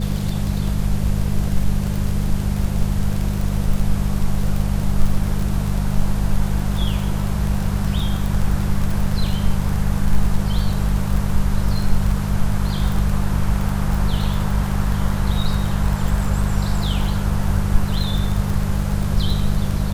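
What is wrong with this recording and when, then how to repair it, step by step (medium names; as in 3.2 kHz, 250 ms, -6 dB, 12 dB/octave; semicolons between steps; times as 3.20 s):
crackle 25 per s -21 dBFS
hum 50 Hz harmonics 4 -22 dBFS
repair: de-click; de-hum 50 Hz, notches 4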